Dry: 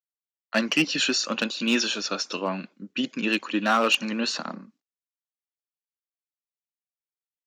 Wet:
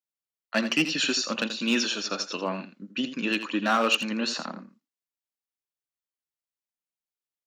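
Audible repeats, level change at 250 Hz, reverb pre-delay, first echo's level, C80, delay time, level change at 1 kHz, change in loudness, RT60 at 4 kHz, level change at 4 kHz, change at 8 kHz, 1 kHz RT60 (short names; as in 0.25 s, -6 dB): 1, -1.5 dB, none, -11.0 dB, none, 83 ms, -1.5 dB, -2.0 dB, none, -1.5 dB, -1.5 dB, none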